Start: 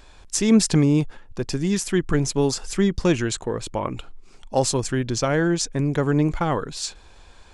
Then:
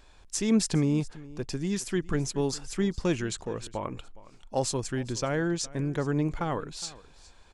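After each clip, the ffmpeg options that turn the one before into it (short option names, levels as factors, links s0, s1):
-af "aecho=1:1:413:0.1,volume=0.422"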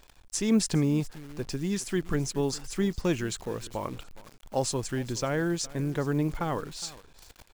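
-af "acrusher=bits=9:dc=4:mix=0:aa=0.000001"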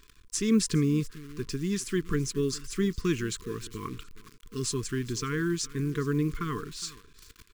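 -af "afftfilt=real='re*(1-between(b*sr/4096,470,1000))':imag='im*(1-between(b*sr/4096,470,1000))':win_size=4096:overlap=0.75"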